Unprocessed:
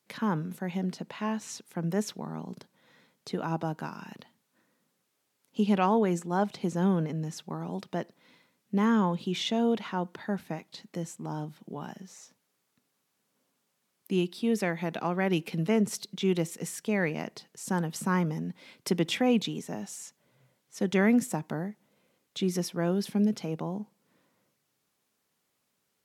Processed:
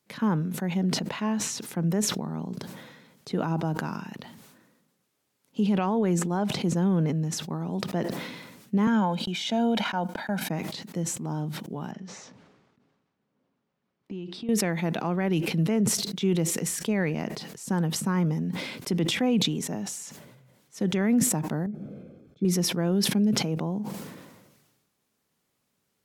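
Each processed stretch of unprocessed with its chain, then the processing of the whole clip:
8.87–10.5 HPF 220 Hz 24 dB/oct + gate -42 dBFS, range -18 dB + comb 1.3 ms, depth 62%
11.91–14.49 compressor 5:1, threshold -38 dBFS + air absorption 130 m + mismatched tape noise reduction decoder only
21.66–22.45 running mean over 46 samples + upward expander, over -49 dBFS
whole clip: low shelf 300 Hz +7 dB; limiter -16.5 dBFS; sustainer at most 42 dB/s

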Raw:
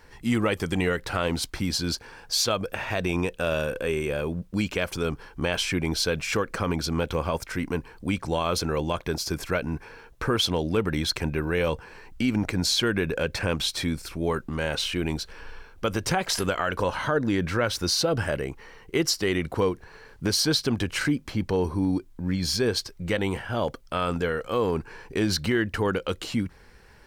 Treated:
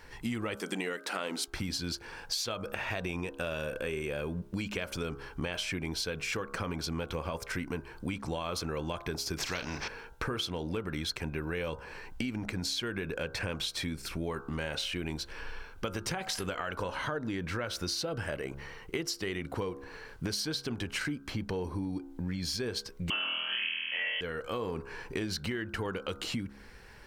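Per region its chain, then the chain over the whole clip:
0.55–1.48 brick-wall FIR high-pass 180 Hz + bell 8600 Hz +4.5 dB 1.3 oct
9.37–9.88 resonant high shelf 7600 Hz -12 dB, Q 3 + doubler 34 ms -12.5 dB + spectral compressor 2:1
23.1–24.21 flutter echo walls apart 4.2 m, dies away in 1.3 s + inverted band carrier 3200 Hz + brick-wall FIR high-pass 180 Hz
whole clip: bell 2500 Hz +2.5 dB 1.7 oct; de-hum 68.77 Hz, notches 23; compressor 6:1, threshold -32 dBFS

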